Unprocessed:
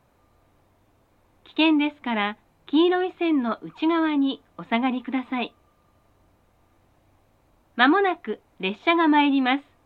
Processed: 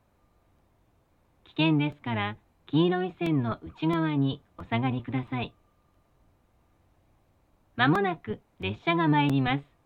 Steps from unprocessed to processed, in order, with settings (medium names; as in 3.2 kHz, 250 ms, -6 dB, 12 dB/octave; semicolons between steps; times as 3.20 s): octave divider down 1 oct, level +1 dB; crackling interface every 0.67 s, samples 128, repeat, from 0.58 s; trim -6 dB